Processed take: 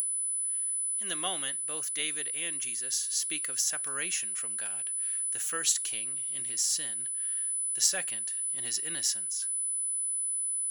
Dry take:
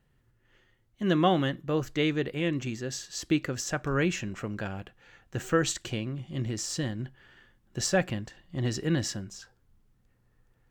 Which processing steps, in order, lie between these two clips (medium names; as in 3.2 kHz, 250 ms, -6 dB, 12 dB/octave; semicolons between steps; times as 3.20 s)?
whistle 10 kHz -41 dBFS; upward compressor, threshold -37 dBFS; differentiator; trim +7 dB